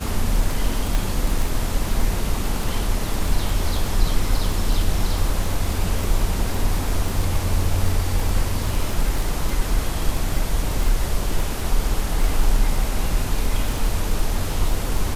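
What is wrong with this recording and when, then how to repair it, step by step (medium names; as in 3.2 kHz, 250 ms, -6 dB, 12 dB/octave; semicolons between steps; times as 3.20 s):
crackle 21 per s
0.95 s: pop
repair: de-click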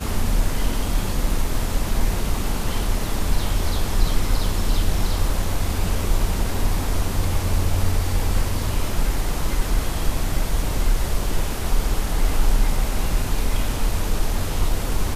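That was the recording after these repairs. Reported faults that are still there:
0.95 s: pop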